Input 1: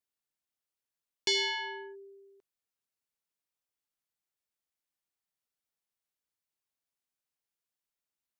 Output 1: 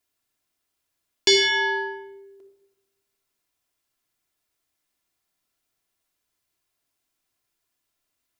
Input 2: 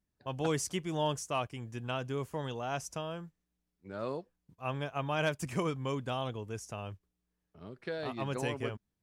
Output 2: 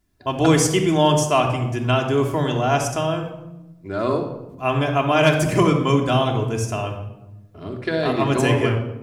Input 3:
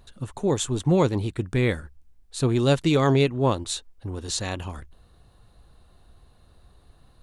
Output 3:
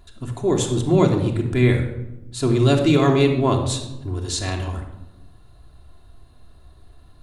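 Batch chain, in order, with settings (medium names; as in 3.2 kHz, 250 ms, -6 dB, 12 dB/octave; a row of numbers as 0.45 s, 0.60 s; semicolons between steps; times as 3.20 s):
simulated room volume 3900 m³, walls furnished, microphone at 3.1 m; normalise loudness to -20 LUFS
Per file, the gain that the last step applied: +10.0 dB, +13.5 dB, +0.5 dB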